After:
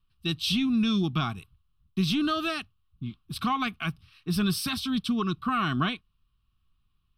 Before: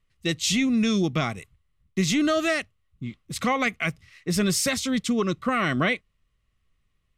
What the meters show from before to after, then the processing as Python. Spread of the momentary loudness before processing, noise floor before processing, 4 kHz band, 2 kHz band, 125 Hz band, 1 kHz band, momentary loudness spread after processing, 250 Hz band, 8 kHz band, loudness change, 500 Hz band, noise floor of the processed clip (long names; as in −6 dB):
13 LU, −72 dBFS, −1.0 dB, −7.0 dB, −1.0 dB, −1.0 dB, 14 LU, −2.5 dB, −12.0 dB, −3.5 dB, −10.5 dB, −72 dBFS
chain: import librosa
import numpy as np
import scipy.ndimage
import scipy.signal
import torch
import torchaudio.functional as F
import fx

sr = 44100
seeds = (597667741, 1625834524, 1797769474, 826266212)

y = fx.fixed_phaser(x, sr, hz=2000.0, stages=6)